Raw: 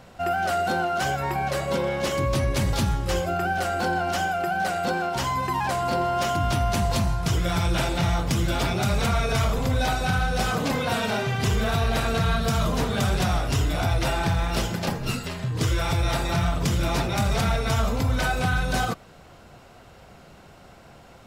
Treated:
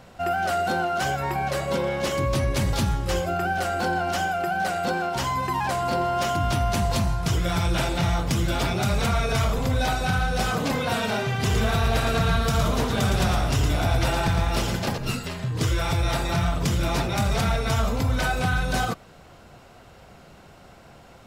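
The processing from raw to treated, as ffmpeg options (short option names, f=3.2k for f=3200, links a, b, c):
-filter_complex "[0:a]asettb=1/sr,asplit=3[a][b][c];[a]atrim=end=11.364[d];[b]atrim=start=11.36:end=14.98,asetpts=PTS-STARTPTS,afade=t=in:d=0.004:c=qsin,afade=t=out:st=3.616:d=0.004:c=qsin,aecho=1:1:113:0.531,atrim=end_sample=159642[e];[c]atrim=start=14.976[f];[d][e]acrossfade=d=0.004:c1=hsin:c2=qsin[g];[g][f]acrossfade=d=0.004:c1=qsin:c2=hsin"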